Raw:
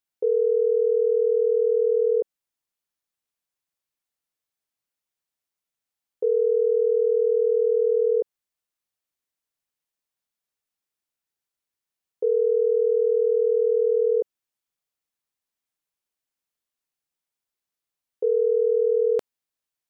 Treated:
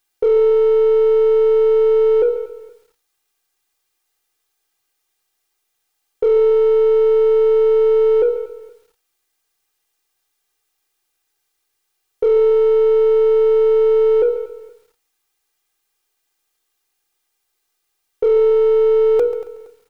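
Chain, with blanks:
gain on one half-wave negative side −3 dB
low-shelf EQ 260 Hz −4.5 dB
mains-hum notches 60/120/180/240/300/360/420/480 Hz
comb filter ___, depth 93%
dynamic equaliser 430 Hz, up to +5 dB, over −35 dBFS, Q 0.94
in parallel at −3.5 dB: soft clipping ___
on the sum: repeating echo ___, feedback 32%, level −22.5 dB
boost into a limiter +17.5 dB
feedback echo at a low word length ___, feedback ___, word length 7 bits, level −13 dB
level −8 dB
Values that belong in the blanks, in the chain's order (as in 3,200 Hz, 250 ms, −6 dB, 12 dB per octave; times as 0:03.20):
2.5 ms, −25 dBFS, 234 ms, 137 ms, 35%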